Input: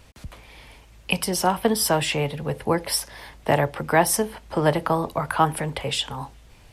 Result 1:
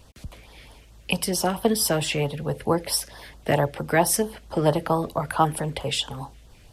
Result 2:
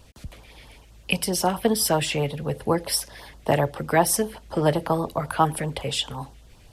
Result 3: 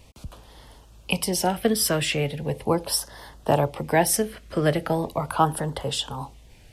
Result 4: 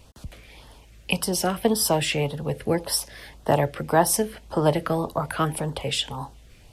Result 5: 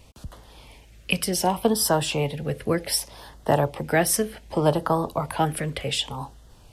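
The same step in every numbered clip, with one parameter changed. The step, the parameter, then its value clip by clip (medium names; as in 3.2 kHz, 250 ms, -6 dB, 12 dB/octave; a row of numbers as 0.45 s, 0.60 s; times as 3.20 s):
LFO notch, rate: 4.5 Hz, 7.8 Hz, 0.39 Hz, 1.8 Hz, 0.66 Hz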